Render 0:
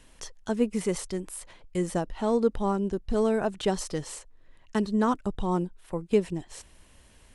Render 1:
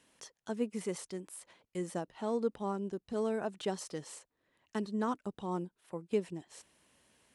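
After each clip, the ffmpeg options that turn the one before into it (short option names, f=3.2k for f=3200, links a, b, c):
-af "highpass=160,volume=-8.5dB"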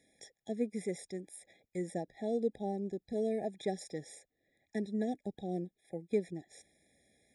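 -af "afftfilt=real='re*eq(mod(floor(b*sr/1024/820),2),0)':imag='im*eq(mod(floor(b*sr/1024/820),2),0)':win_size=1024:overlap=0.75"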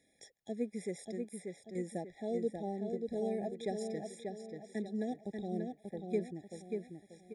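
-filter_complex "[0:a]asplit=2[a][b];[b]adelay=587,lowpass=f=4k:p=1,volume=-4.5dB,asplit=2[c][d];[d]adelay=587,lowpass=f=4k:p=1,volume=0.38,asplit=2[e][f];[f]adelay=587,lowpass=f=4k:p=1,volume=0.38,asplit=2[g][h];[h]adelay=587,lowpass=f=4k:p=1,volume=0.38,asplit=2[i][j];[j]adelay=587,lowpass=f=4k:p=1,volume=0.38[k];[a][c][e][g][i][k]amix=inputs=6:normalize=0,volume=-2.5dB"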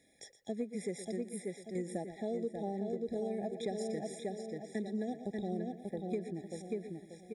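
-af "aecho=1:1:118|236|354:0.188|0.0584|0.0181,acompressor=threshold=-37dB:ratio=6,volume=4dB"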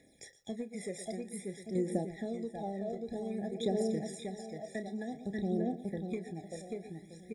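-filter_complex "[0:a]aphaser=in_gain=1:out_gain=1:delay=1.7:decay=0.56:speed=0.53:type=triangular,asplit=2[a][b];[b]adelay=31,volume=-11dB[c];[a][c]amix=inputs=2:normalize=0"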